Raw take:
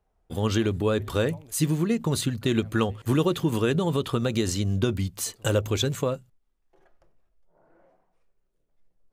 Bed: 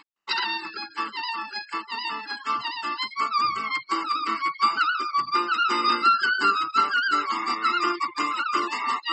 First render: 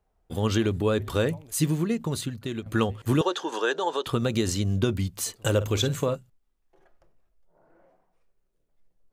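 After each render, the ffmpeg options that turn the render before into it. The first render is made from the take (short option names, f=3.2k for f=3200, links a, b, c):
-filter_complex "[0:a]asettb=1/sr,asplit=3[a][b][c];[a]atrim=end=3.214[d];[b]atrim=start=3.21:end=4.06,asetpts=PTS-STARTPTS,afade=t=in:d=0.004:c=qsin,afade=t=out:st=0.846:d=0.004:c=qsin,highpass=f=390:w=0.5412,highpass=f=390:w=1.3066,equalizer=f=860:t=q:w=4:g=8,equalizer=f=1.6k:t=q:w=4:g=9,equalizer=f=2.2k:t=q:w=4:g=-8,equalizer=f=3.5k:t=q:w=4:g=3,equalizer=f=6k:t=q:w=4:g=6,equalizer=f=8.8k:t=q:w=4:g=-9,lowpass=f=9.1k:w=0.5412,lowpass=f=9.1k:w=1.3066[e];[c]atrim=start=4.056[f];[d][e]acrossfade=d=0.004:c1=hsin:c2=qsin[g];[g][f]acrossfade=d=0.004:c1=qsin:c2=hsin,asettb=1/sr,asplit=3[h][i][j];[h]atrim=end=5.564[k];[i]atrim=start=5.56:end=6.15,asetpts=PTS-STARTPTS,afade=t=in:d=0.004:c=qsin,afade=t=out:st=0.586:d=0.004:c=qsin,asplit=2[l][m];[m]adelay=49,volume=-12.5dB[n];[l][n]amix=inputs=2:normalize=0,atrim=end_sample=26019[o];[j]atrim=start=6.146[p];[k][o]acrossfade=d=0.004:c1=hsin:c2=qsin[q];[q][p]acrossfade=d=0.004:c1=qsin:c2=hsin,asplit=2[r][s];[r]atrim=end=2.66,asetpts=PTS-STARTPTS,afade=t=out:st=1.61:d=1.05:silence=0.281838[t];[s]atrim=start=2.66,asetpts=PTS-STARTPTS,afade=t=in:d=0.004:c=hsin:silence=0.281838[u];[t][u]concat=n=2:v=0:a=1"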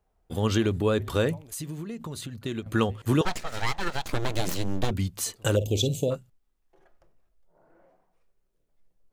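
-filter_complex "[0:a]asettb=1/sr,asplit=3[a][b][c];[a]atrim=end=1.414[d];[b]atrim=start=1.41:end=2.42,asetpts=PTS-STARTPTS,afade=t=in:d=0.004:c=qsin,afade=t=out:st=1.006:d=0.004:c=qsin,acompressor=threshold=-33dB:ratio=5:attack=3.2:release=140:knee=1:detection=peak[e];[c]atrim=start=2.416[f];[d][e]acrossfade=d=0.004:c1=hsin:c2=qsin[g];[g][f]acrossfade=d=0.004:c1=qsin:c2=hsin,asettb=1/sr,asplit=3[h][i][j];[h]atrim=end=3.254[k];[i]atrim=start=3.25:end=4.91,asetpts=PTS-STARTPTS,afade=t=in:d=0.004:c=qsin,afade=t=out:st=1.656:d=0.004:c=qsin,aeval=exprs='abs(val(0))':c=same[l];[j]atrim=start=4.906[m];[k][l]acrossfade=d=0.004:c1=hsin:c2=qsin[n];[n][m]acrossfade=d=0.004:c1=qsin:c2=hsin,asplit=3[o][p][q];[o]afade=t=out:st=5.55:d=0.02[r];[p]asuperstop=centerf=1400:order=8:qfactor=0.7,afade=t=in:st=5.55:d=0.02,afade=t=out:st=6.1:d=0.02[s];[q]afade=t=in:st=6.1:d=0.02[t];[r][s][t]amix=inputs=3:normalize=0"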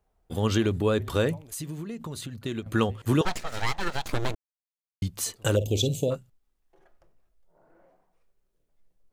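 -filter_complex "[0:a]asplit=3[a][b][c];[a]atrim=end=4.35,asetpts=PTS-STARTPTS,afade=t=out:st=4.346:d=0.004:c=hsin[d];[b]atrim=start=4.35:end=5.02,asetpts=PTS-STARTPTS,volume=0[e];[c]atrim=start=5.02,asetpts=PTS-STARTPTS,afade=t=in:d=0.004:c=hsin[f];[d][e][f]concat=n=3:v=0:a=1"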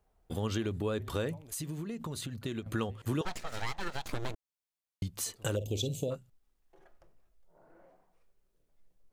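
-af "acompressor=threshold=-37dB:ratio=2"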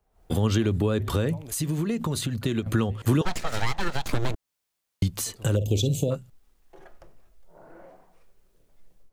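-filter_complex "[0:a]acrossover=split=260[a][b];[b]alimiter=level_in=7.5dB:limit=-24dB:level=0:latency=1:release=281,volume=-7.5dB[c];[a][c]amix=inputs=2:normalize=0,dynaudnorm=f=110:g=3:m=12dB"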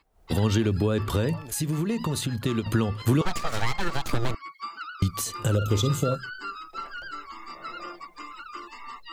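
-filter_complex "[1:a]volume=-15dB[a];[0:a][a]amix=inputs=2:normalize=0"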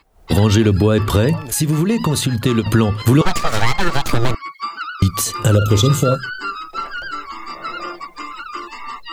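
-af "volume=10.5dB,alimiter=limit=-3dB:level=0:latency=1"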